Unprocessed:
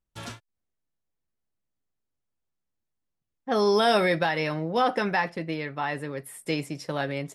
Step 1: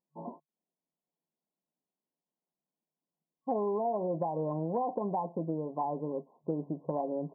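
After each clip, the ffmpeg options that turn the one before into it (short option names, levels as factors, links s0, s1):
-af "afftfilt=real='re*between(b*sr/4096,140,1100)':imag='im*between(b*sr/4096,140,1100)':win_size=4096:overlap=0.75,equalizer=f=690:t=o:w=0.22:g=3.5,acompressor=threshold=0.0398:ratio=12"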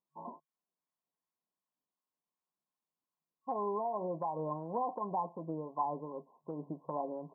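-filter_complex "[0:a]equalizer=f=1100:t=o:w=0.7:g=13.5,acrossover=split=800[s0][s1];[s0]aeval=exprs='val(0)*(1-0.5/2+0.5/2*cos(2*PI*2.7*n/s))':c=same[s2];[s1]aeval=exprs='val(0)*(1-0.5/2-0.5/2*cos(2*PI*2.7*n/s))':c=same[s3];[s2][s3]amix=inputs=2:normalize=0,volume=0.562"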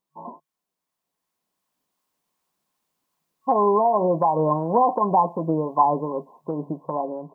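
-af "dynaudnorm=f=400:g=7:m=2.66,volume=2.51"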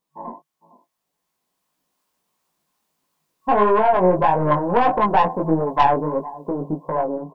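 -af "aecho=1:1:456:0.1,aeval=exprs='(tanh(5.01*val(0)+0.35)-tanh(0.35))/5.01':c=same,flanger=delay=18:depth=4.1:speed=1.6,volume=2.66"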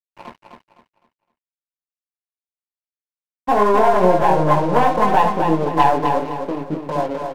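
-filter_complex "[0:a]asplit=2[s0][s1];[s1]aecho=0:1:59|74:0.224|0.178[s2];[s0][s2]amix=inputs=2:normalize=0,aeval=exprs='sgn(val(0))*max(abs(val(0))-0.0188,0)':c=same,asplit=2[s3][s4];[s4]aecho=0:1:256|512|768|1024:0.501|0.16|0.0513|0.0164[s5];[s3][s5]amix=inputs=2:normalize=0,volume=1.19"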